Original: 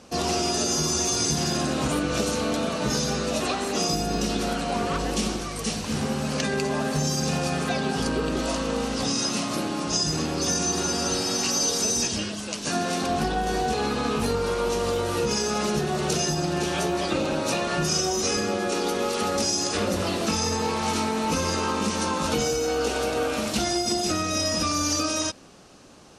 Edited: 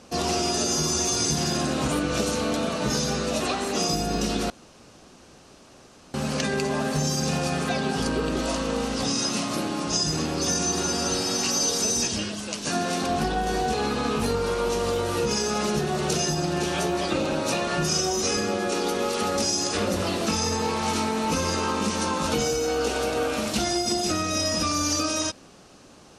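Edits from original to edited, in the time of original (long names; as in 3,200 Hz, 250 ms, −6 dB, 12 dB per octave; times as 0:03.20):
0:04.50–0:06.14: fill with room tone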